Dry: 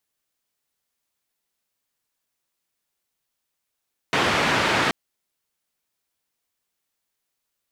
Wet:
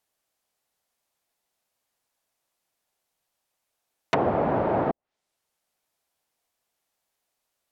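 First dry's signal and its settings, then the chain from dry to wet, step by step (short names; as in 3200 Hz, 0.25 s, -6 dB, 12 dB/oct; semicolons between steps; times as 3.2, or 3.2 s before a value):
noise band 100–2200 Hz, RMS -21 dBFS 0.78 s
treble ducked by the level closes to 600 Hz, closed at -21.5 dBFS; bell 700 Hz +8 dB 1 oct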